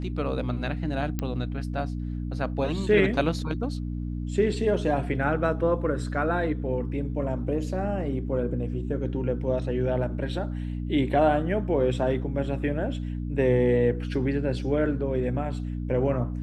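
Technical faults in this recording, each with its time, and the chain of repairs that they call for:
hum 60 Hz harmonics 5 -31 dBFS
1.19 s: pop -15 dBFS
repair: de-click; de-hum 60 Hz, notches 5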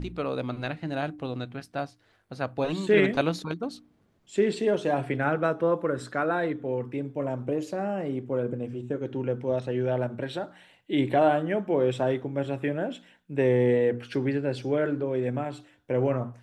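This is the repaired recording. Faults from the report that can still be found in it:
nothing left

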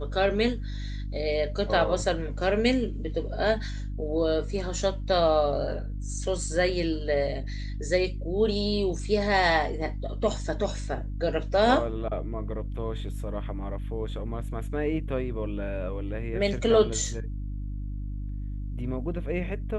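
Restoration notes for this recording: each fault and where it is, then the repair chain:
hum 50 Hz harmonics 6 -33 dBFS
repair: de-hum 50 Hz, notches 6

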